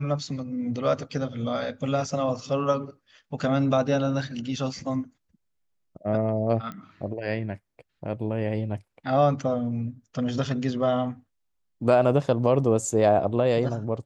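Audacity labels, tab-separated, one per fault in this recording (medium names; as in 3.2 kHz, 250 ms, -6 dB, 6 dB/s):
6.720000	6.720000	pop -24 dBFS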